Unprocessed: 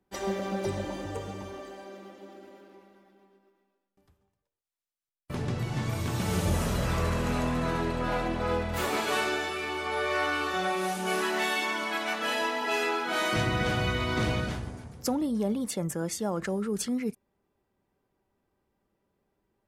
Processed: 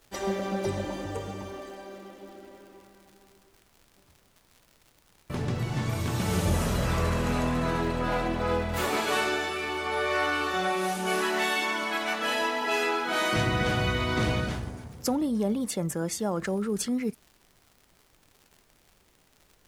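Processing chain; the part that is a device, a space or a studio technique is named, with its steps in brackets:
vinyl LP (surface crackle 100 per second −45 dBFS; pink noise bed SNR 35 dB)
level +1.5 dB

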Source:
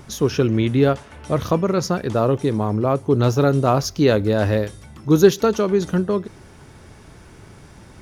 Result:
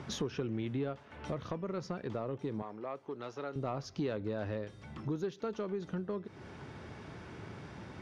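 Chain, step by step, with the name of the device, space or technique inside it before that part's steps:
AM radio (band-pass filter 100–3,800 Hz; downward compressor 5 to 1, threshold −32 dBFS, peak gain reduction 22 dB; soft clipping −22 dBFS, distortion −22 dB; amplitude tremolo 0.27 Hz, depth 18%)
0:02.62–0:03.56: meter weighting curve A
level −1.5 dB

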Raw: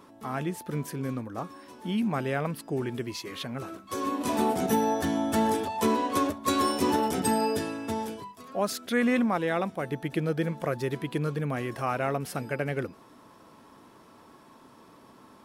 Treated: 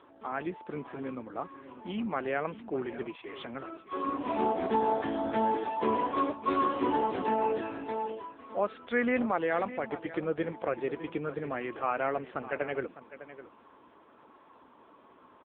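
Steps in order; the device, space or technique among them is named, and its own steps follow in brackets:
satellite phone (band-pass filter 310–3,200 Hz; single-tap delay 605 ms −14 dB; AMR narrowband 6.7 kbit/s 8,000 Hz)

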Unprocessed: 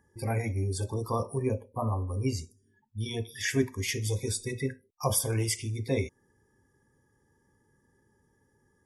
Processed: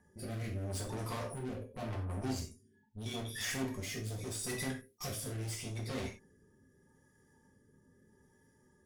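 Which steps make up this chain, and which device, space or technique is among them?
overdriven rotary cabinet (tube saturation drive 41 dB, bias 0.45; rotating-speaker cabinet horn 0.8 Hz)
0:04.39–0:05.09: high-shelf EQ 5,000 Hz +10 dB
reverb whose tail is shaped and stops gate 120 ms falling, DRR −0.5 dB
level +2.5 dB

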